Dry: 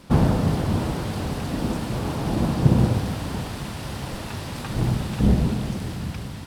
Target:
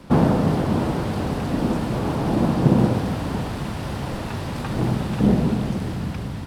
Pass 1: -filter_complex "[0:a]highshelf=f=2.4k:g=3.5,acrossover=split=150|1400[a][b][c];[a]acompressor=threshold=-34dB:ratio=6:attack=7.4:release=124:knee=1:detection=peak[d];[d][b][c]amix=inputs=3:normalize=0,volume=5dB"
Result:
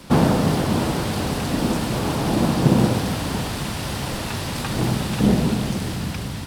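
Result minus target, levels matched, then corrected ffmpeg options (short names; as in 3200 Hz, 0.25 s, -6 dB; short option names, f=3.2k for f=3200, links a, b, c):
4000 Hz band +7.5 dB
-filter_complex "[0:a]highshelf=f=2.4k:g=-8.5,acrossover=split=150|1400[a][b][c];[a]acompressor=threshold=-34dB:ratio=6:attack=7.4:release=124:knee=1:detection=peak[d];[d][b][c]amix=inputs=3:normalize=0,volume=5dB"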